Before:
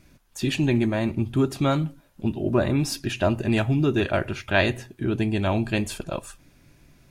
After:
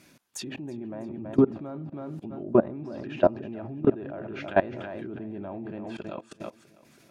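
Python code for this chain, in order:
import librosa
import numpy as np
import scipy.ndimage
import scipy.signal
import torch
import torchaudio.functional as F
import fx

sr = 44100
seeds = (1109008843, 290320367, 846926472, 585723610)

p1 = fx.env_lowpass_down(x, sr, base_hz=880.0, full_db=-22.0)
p2 = scipy.signal.sosfilt(scipy.signal.butter(2, 190.0, 'highpass', fs=sr, output='sos'), p1)
p3 = fx.high_shelf(p2, sr, hz=2500.0, db=3.0)
p4 = p3 + fx.echo_feedback(p3, sr, ms=325, feedback_pct=38, wet_db=-11, dry=0)
p5 = fx.level_steps(p4, sr, step_db=21)
y = p5 * librosa.db_to_amplitude(5.5)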